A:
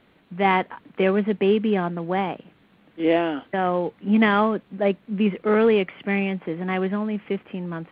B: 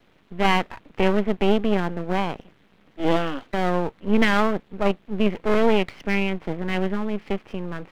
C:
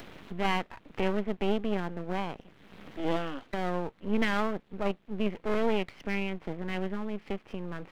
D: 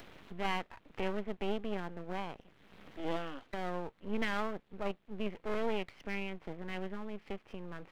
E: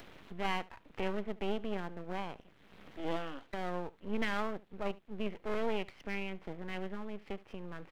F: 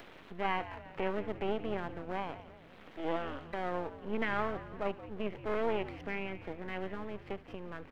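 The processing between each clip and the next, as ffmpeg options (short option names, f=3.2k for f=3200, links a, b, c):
-af "aeval=exprs='max(val(0),0)':c=same,volume=3dB"
-af "acompressor=mode=upward:threshold=-20dB:ratio=2.5,volume=-9dB"
-af "equalizer=f=210:w=0.78:g=-3,volume=-5.5dB"
-af "aecho=1:1:73:0.0891"
-filter_complex "[0:a]bass=f=250:g=-6,treble=f=4k:g=-6,acrossover=split=2800[a][b];[b]acompressor=threshold=-58dB:ratio=4:attack=1:release=60[c];[a][c]amix=inputs=2:normalize=0,asplit=6[d][e][f][g][h][i];[e]adelay=175,afreqshift=-83,volume=-14dB[j];[f]adelay=350,afreqshift=-166,volume=-19.7dB[k];[g]adelay=525,afreqshift=-249,volume=-25.4dB[l];[h]adelay=700,afreqshift=-332,volume=-31dB[m];[i]adelay=875,afreqshift=-415,volume=-36.7dB[n];[d][j][k][l][m][n]amix=inputs=6:normalize=0,volume=3dB"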